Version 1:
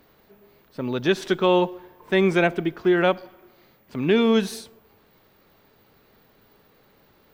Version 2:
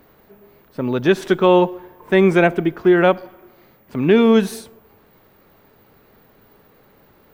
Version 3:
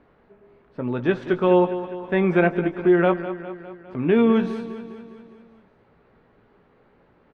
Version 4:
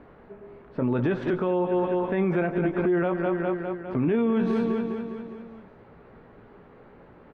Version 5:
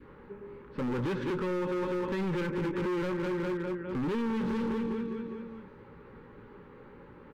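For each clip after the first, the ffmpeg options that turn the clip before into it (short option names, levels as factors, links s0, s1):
-af "equalizer=f=4400:w=0.8:g=-7,volume=2"
-filter_complex "[0:a]lowpass=2500,asplit=2[s0][s1];[s1]adelay=17,volume=0.376[s2];[s0][s2]amix=inputs=2:normalize=0,asplit=2[s3][s4];[s4]aecho=0:1:203|406|609|812|1015|1218:0.237|0.138|0.0798|0.0463|0.0268|0.0156[s5];[s3][s5]amix=inputs=2:normalize=0,volume=0.531"
-af "highshelf=f=3400:g=-10.5,acompressor=threshold=0.0562:ratio=4,alimiter=level_in=1.06:limit=0.0631:level=0:latency=1:release=24,volume=0.944,volume=2.51"
-af "adynamicequalizer=threshold=0.00891:dfrequency=780:dqfactor=0.92:tfrequency=780:tqfactor=0.92:attack=5:release=100:ratio=0.375:range=2:mode=cutabove:tftype=bell,asoftclip=type=hard:threshold=0.0355,asuperstop=centerf=680:order=4:qfactor=3"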